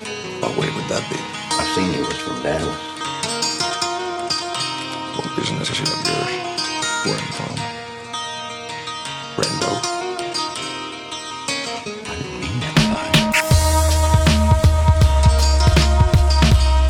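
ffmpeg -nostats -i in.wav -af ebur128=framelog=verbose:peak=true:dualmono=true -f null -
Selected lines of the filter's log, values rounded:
Integrated loudness:
  I:         -16.4 LUFS
  Threshold: -26.4 LUFS
Loudness range:
  LRA:         8.8 LU
  Threshold: -37.0 LUFS
  LRA low:   -20.9 LUFS
  LRA high:  -12.1 LUFS
True peak:
  Peak:       -3.0 dBFS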